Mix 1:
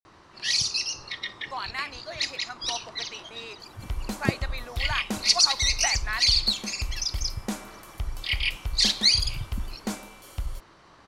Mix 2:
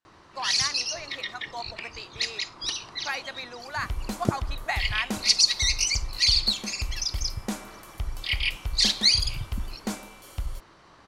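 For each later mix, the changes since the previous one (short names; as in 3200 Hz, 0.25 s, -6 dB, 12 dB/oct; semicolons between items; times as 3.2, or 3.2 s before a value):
speech: entry -1.15 s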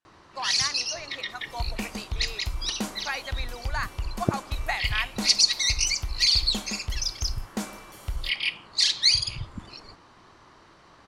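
second sound: entry -2.30 s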